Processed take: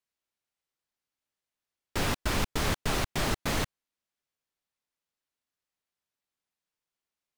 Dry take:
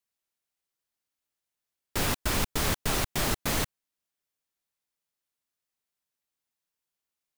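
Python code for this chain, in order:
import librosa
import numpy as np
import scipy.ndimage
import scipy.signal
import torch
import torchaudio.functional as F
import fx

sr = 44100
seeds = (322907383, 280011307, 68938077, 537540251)

y = fx.high_shelf(x, sr, hz=8400.0, db=-11.0)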